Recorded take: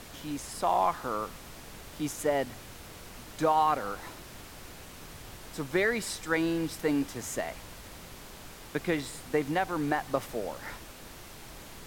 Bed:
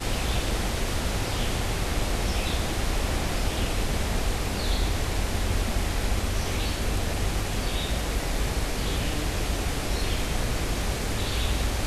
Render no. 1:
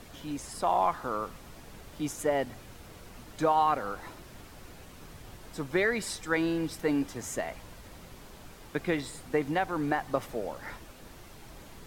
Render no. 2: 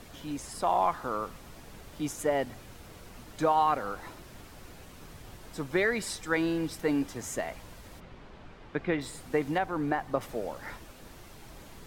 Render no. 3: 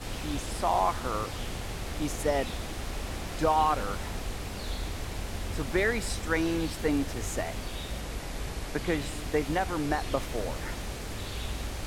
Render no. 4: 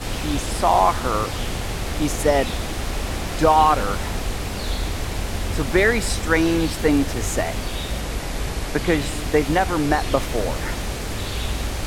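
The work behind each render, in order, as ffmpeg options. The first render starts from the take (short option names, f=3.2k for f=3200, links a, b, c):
-af "afftdn=nr=6:nf=-48"
-filter_complex "[0:a]asplit=3[a][b][c];[a]afade=t=out:st=7.99:d=0.02[d];[b]lowpass=3k,afade=t=in:st=7.99:d=0.02,afade=t=out:st=9:d=0.02[e];[c]afade=t=in:st=9:d=0.02[f];[d][e][f]amix=inputs=3:normalize=0,asettb=1/sr,asplit=3[g][h][i];[g]atrim=end=9.584[j];[h]atrim=start=9.58:end=10.21,asetpts=PTS-STARTPTS,afade=t=in:d=0.004:c=qsin,afade=t=out:st=0.626:d=0.004:c=qsin,highshelf=f=3k:g=-7.5[k];[i]atrim=start=10.206[l];[j][k]acrossfade=d=0.004:c1=hsin:c2=qsin[m];[m][l]acrossfade=d=0.004:c1=qsin:c2=hsin"
-filter_complex "[1:a]volume=-9dB[a];[0:a][a]amix=inputs=2:normalize=0"
-af "volume=9.5dB"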